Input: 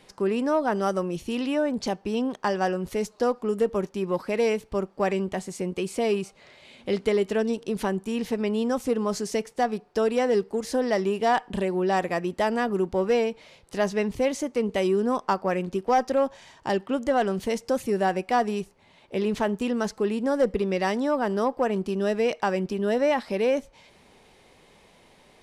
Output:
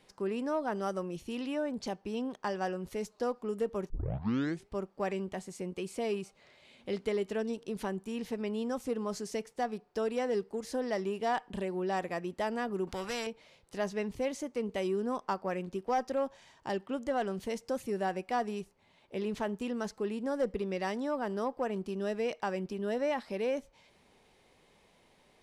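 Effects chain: 3.9 tape start 0.82 s; 12.87–13.27 spectral compressor 2:1; gain -9 dB

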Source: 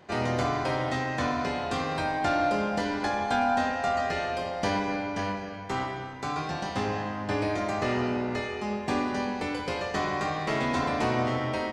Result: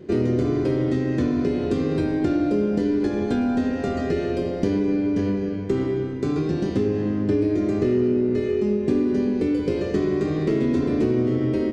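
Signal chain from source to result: resonant low shelf 550 Hz +13 dB, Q 3; compressor 3:1, threshold -18 dBFS, peak gain reduction 8 dB; gain -1.5 dB

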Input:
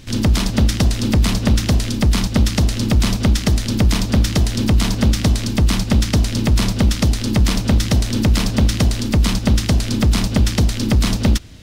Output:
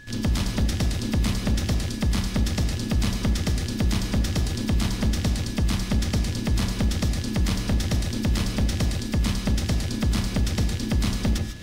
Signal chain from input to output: reverse; upward compressor, threshold -22 dBFS; reverse; whine 1700 Hz -36 dBFS; non-linear reverb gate 0.17 s rising, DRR 5.5 dB; gain -9 dB

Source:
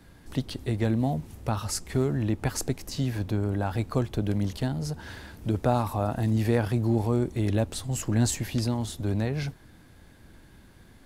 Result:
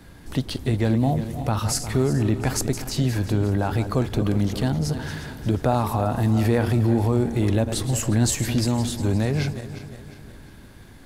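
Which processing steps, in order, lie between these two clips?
regenerating reverse delay 0.178 s, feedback 65%, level -12 dB; in parallel at +1 dB: limiter -20.5 dBFS, peak gain reduction 10.5 dB

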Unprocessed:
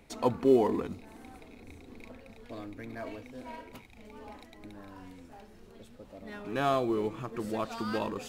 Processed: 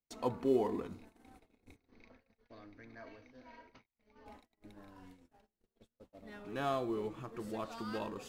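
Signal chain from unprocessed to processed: notch 2400 Hz, Q 29; de-hum 79.46 Hz, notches 28; gate -48 dBFS, range -33 dB; 1.76–4.26 rippled Chebyshev low-pass 6300 Hz, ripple 6 dB; gain -7 dB

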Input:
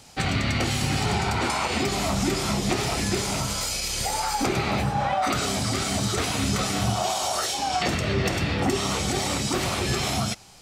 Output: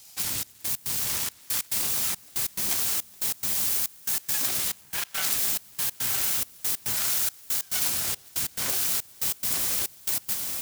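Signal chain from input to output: self-modulated delay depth 0.87 ms; pre-emphasis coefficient 0.9; in parallel at -3 dB: wavefolder -30 dBFS; on the sum: diffused feedback echo 1.019 s, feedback 46%, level -4.5 dB; step gate "xxxx..x." 140 bpm -24 dB

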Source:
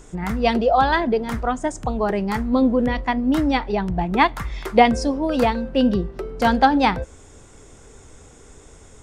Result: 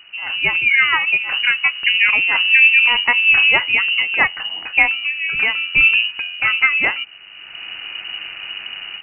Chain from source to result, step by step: buzz 100 Hz, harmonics 17, -52 dBFS -3 dB/oct; AGC gain up to 15 dB; inverted band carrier 2900 Hz; gain -1.5 dB

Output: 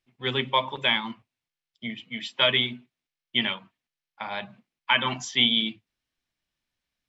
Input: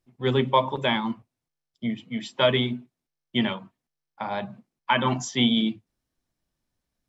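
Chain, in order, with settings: bell 2700 Hz +14.5 dB 2.2 oct; gain -8.5 dB

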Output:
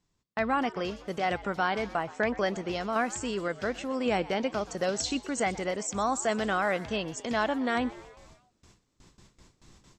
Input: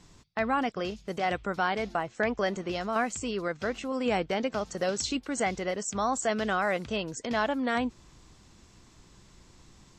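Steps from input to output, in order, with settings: gate with hold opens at -44 dBFS; frequency-shifting echo 0.123 s, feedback 55%, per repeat +98 Hz, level -18.5 dB

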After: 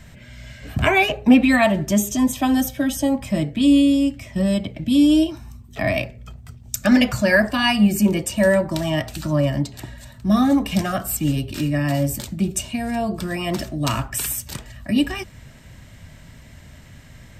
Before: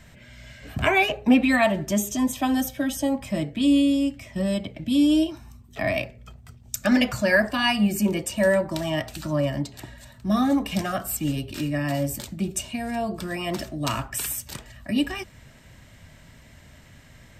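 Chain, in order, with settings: tone controls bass +4 dB, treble +1 dB; gain +3 dB

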